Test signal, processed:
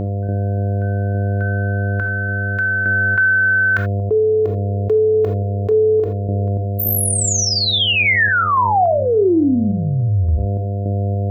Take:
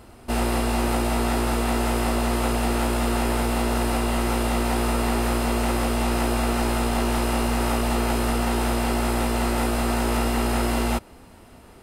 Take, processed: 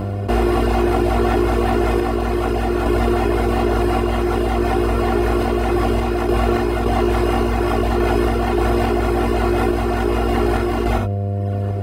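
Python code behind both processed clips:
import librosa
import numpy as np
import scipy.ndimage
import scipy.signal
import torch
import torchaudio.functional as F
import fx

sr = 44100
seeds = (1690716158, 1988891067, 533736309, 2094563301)

y = fx.dereverb_blind(x, sr, rt60_s=1.1)
y = scipy.signal.sosfilt(scipy.signal.butter(4, 48.0, 'highpass', fs=sr, output='sos'), y)
y = fx.peak_eq(y, sr, hz=10000.0, db=-15.0, octaves=2.3)
y = y + 0.71 * np.pad(y, (int(2.8 * sr / 1000.0), 0))[:len(y)]
y = fx.dynamic_eq(y, sr, hz=440.0, q=3.3, threshold_db=-35.0, ratio=4.0, max_db=4)
y = fx.rider(y, sr, range_db=4, speed_s=2.0)
y = fx.dmg_buzz(y, sr, base_hz=100.0, harmonics=7, level_db=-38.0, tilt_db=-5, odd_only=False)
y = fx.tremolo_random(y, sr, seeds[0], hz=3.5, depth_pct=70)
y = fx.rev_gated(y, sr, seeds[1], gate_ms=100, shape='flat', drr_db=9.5)
y = fx.env_flatten(y, sr, amount_pct=70)
y = y * 10.0 ** (6.0 / 20.0)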